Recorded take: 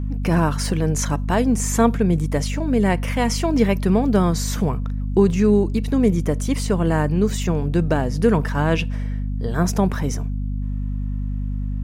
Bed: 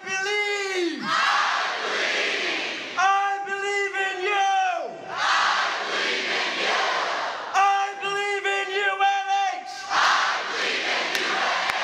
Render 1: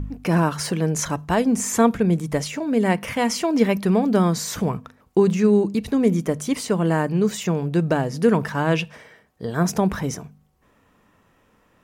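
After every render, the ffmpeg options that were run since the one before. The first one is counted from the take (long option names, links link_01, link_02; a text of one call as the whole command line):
ffmpeg -i in.wav -af "bandreject=frequency=50:width_type=h:width=4,bandreject=frequency=100:width_type=h:width=4,bandreject=frequency=150:width_type=h:width=4,bandreject=frequency=200:width_type=h:width=4,bandreject=frequency=250:width_type=h:width=4" out.wav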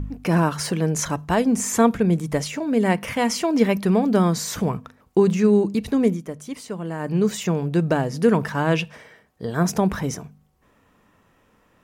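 ffmpeg -i in.wav -filter_complex "[0:a]asplit=3[link_01][link_02][link_03];[link_01]atrim=end=6.19,asetpts=PTS-STARTPTS,afade=type=out:start_time=6.05:duration=0.14:silence=0.334965[link_04];[link_02]atrim=start=6.19:end=6.99,asetpts=PTS-STARTPTS,volume=-9.5dB[link_05];[link_03]atrim=start=6.99,asetpts=PTS-STARTPTS,afade=type=in:duration=0.14:silence=0.334965[link_06];[link_04][link_05][link_06]concat=n=3:v=0:a=1" out.wav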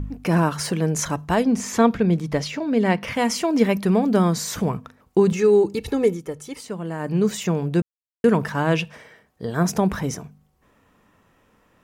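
ffmpeg -i in.wav -filter_complex "[0:a]asettb=1/sr,asplit=3[link_01][link_02][link_03];[link_01]atrim=end=1.434[link_04];[link_02]atrim=start=1.43:end=3.15,asetpts=PTS-STARTPTS,afade=type=in:duration=0.004:curve=qsin,afade=type=out:start_time=1.716:duration=0.004:curve=qsin,highshelf=frequency=6300:width_type=q:width=1.5:gain=-7.5[link_05];[link_03]atrim=start=3.146[link_06];[link_04][link_05]acrossfade=duration=0.004:curve1=hsin:curve2=qsin[link_07];[link_07][link_06]acrossfade=duration=0.004:curve1=qsin:curve2=hsin,asettb=1/sr,asplit=3[link_08][link_09][link_10];[link_08]atrim=end=5.324[link_11];[link_09]atrim=start=5.32:end=6.61,asetpts=PTS-STARTPTS,afade=type=in:duration=0.004:curve=qsin,afade=type=out:start_time=1.286:duration=0.004:curve=qsin,aecho=1:1:2.3:0.65,atrim=end_sample=56889[link_12];[link_10]atrim=start=6.606[link_13];[link_11][link_12]acrossfade=duration=0.004:curve1=hsin:curve2=qsin[link_14];[link_14][link_13]acrossfade=duration=0.004:curve1=qsin:curve2=hsin,asplit=3[link_15][link_16][link_17];[link_15]atrim=end=7.82,asetpts=PTS-STARTPTS,afade=type=out:start_time=7.816:duration=0.004:curve=hsin[link_18];[link_16]atrim=start=7.82:end=8.24,asetpts=PTS-STARTPTS,volume=0[link_19];[link_17]atrim=start=8.24,asetpts=PTS-STARTPTS,afade=type=in:duration=0.004:curve=hsin[link_20];[link_18][link_19][link_20]concat=n=3:v=0:a=1" out.wav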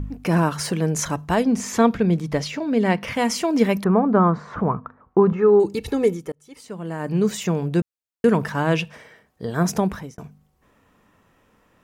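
ffmpeg -i in.wav -filter_complex "[0:a]asettb=1/sr,asplit=3[link_01][link_02][link_03];[link_01]atrim=end=3.844[link_04];[link_02]atrim=start=3.84:end=5.6,asetpts=PTS-STARTPTS,afade=type=in:duration=0.004:curve=qsin,afade=type=out:start_time=1.756:duration=0.004:curve=qsin,lowpass=frequency=1200:width_type=q:width=2.6[link_05];[link_03]atrim=start=5.596[link_06];[link_04][link_05]acrossfade=duration=0.004:curve1=hsin:curve2=qsin[link_07];[link_07][link_06]acrossfade=duration=0.004:curve1=qsin:curve2=hsin,asplit=3[link_08][link_09][link_10];[link_08]atrim=end=6.32,asetpts=PTS-STARTPTS,afade=type=out:start_time=6.316:duration=0.004:curve=hsin[link_11];[link_09]atrim=start=6.32:end=10.18,asetpts=PTS-STARTPTS,afade=type=in:duration=0.6,afade=type=out:start_time=3.46:duration=0.4[link_12];[link_10]atrim=start=10.18,asetpts=PTS-STARTPTS,afade=type=in:duration=0.004:curve=hsin[link_13];[link_11][link_12][link_13]concat=n=3:v=0:a=1" out.wav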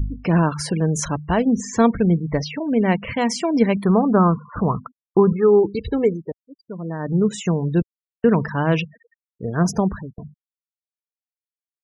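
ffmpeg -i in.wav -af "afftfilt=real='re*gte(hypot(re,im),0.0316)':imag='im*gte(hypot(re,im),0.0316)':win_size=1024:overlap=0.75,lowshelf=frequency=110:gain=8.5" out.wav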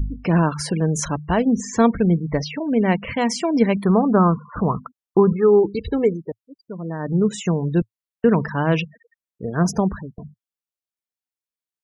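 ffmpeg -i in.wav -af "equalizer=frequency=110:width_type=o:width=0.25:gain=-6.5" out.wav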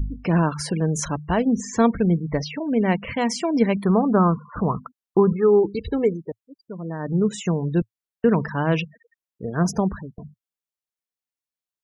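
ffmpeg -i in.wav -af "volume=-2dB" out.wav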